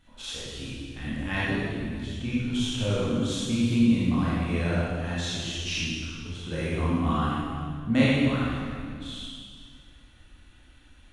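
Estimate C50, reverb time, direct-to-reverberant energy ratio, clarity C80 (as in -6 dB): -4.5 dB, 2.1 s, -9.0 dB, -2.0 dB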